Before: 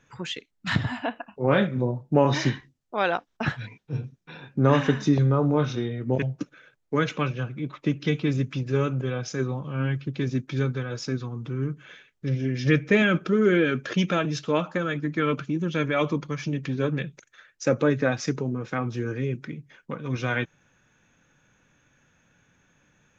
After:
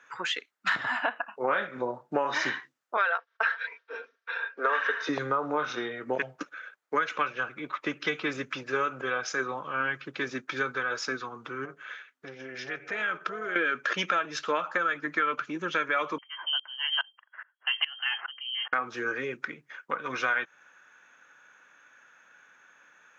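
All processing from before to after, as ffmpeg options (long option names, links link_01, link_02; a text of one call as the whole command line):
ffmpeg -i in.wav -filter_complex "[0:a]asettb=1/sr,asplit=3[link_01][link_02][link_03];[link_01]atrim=end=2.974[link_04];[link_02]atrim=start=2.97:end=5.09,asetpts=PTS-STARTPTS,afade=type=in:duration=0.004:curve=qsin,afade=type=out:start_time=2.116:duration=0.004:curve=qsin,highpass=frequency=420:width=0.5412,highpass=frequency=420:width=1.3066,equalizer=frequency=500:width_type=q:width=4:gain=4,equalizer=frequency=780:width_type=q:width=4:gain=-8,equalizer=frequency=1600:width_type=q:width=4:gain=5,lowpass=frequency=5200:width=0.5412,lowpass=frequency=5200:width=1.3066,aecho=1:1:4.4:0.54,atrim=end_sample=93492[link_05];[link_03]atrim=start=5.086[link_06];[link_04][link_05]acrossfade=duration=0.004:curve1=hsin:curve2=qsin[link_07];[link_07][link_06]acrossfade=duration=0.004:curve1=qsin:curve2=hsin,asettb=1/sr,asplit=3[link_08][link_09][link_10];[link_08]atrim=end=11.654[link_11];[link_09]atrim=start=11.65:end=13.56,asetpts=PTS-STARTPTS,afade=type=in:duration=0.004:curve=qsin,afade=type=out:start_time=1.906:duration=0.004:curve=qsin,asubboost=boost=3.5:cutoff=140,acompressor=threshold=-28dB:ratio=6:attack=3.2:release=140:knee=1:detection=peak,tremolo=f=260:d=0.571[link_12];[link_10]atrim=start=13.556[link_13];[link_11][link_12]acrossfade=duration=0.004:curve1=hsin:curve2=qsin[link_14];[link_14][link_13]acrossfade=duration=0.004:curve1=qsin:curve2=hsin,asettb=1/sr,asplit=3[link_15][link_16][link_17];[link_15]atrim=end=16.184[link_18];[link_16]atrim=start=16.18:end=18.73,asetpts=PTS-STARTPTS,afade=type=in:duration=0.004:curve=qsin,afade=type=out:start_time=2.546:duration=0.004:curve=qsin,lowpass=frequency=2800:width_type=q:width=0.5098,lowpass=frequency=2800:width_type=q:width=0.6013,lowpass=frequency=2800:width_type=q:width=0.9,lowpass=frequency=2800:width_type=q:width=2.563,afreqshift=-3300,aeval=exprs='val(0)*pow(10,-24*if(lt(mod(-2.4*n/s,1),2*abs(-2.4)/1000),1-mod(-2.4*n/s,1)/(2*abs(-2.4)/1000),(mod(-2.4*n/s,1)-2*abs(-2.4)/1000)/(1-2*abs(-2.4)/1000))/20)':channel_layout=same[link_19];[link_17]atrim=start=18.726[link_20];[link_18][link_19]acrossfade=duration=0.004:curve1=hsin:curve2=qsin[link_21];[link_21][link_20]acrossfade=duration=0.004:curve1=qsin:curve2=hsin,highpass=450,equalizer=frequency=1400:width=1.1:gain=12,acompressor=threshold=-24dB:ratio=6" out.wav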